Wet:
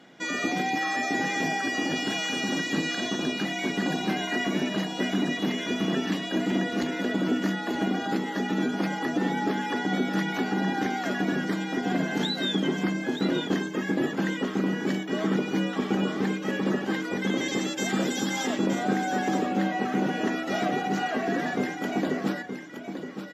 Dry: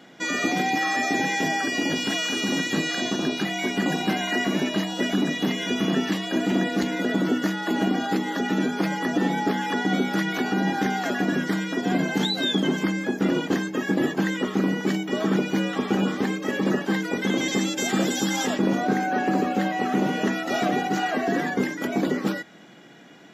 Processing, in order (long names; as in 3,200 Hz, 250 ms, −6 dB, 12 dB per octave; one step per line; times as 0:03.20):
high-shelf EQ 9,500 Hz −6 dB
on a send: single-tap delay 920 ms −8.5 dB
on the sum: level −3.5 dB